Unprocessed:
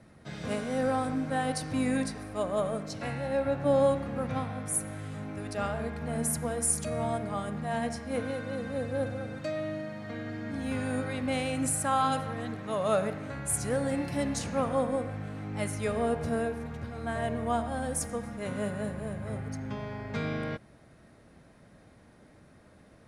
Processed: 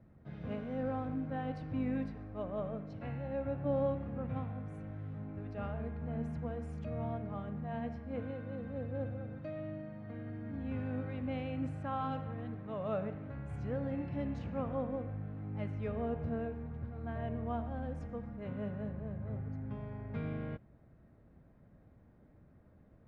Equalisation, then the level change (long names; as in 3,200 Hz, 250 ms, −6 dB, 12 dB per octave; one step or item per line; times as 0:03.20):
low-shelf EQ 150 Hz +8.5 dB
dynamic equaliser 2,800 Hz, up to +6 dB, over −53 dBFS, Q 2
head-to-tape spacing loss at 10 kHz 43 dB
−7.5 dB